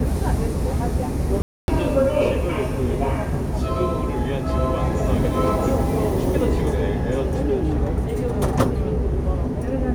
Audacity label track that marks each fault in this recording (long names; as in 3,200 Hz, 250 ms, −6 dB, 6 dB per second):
1.420000	1.680000	drop-out 261 ms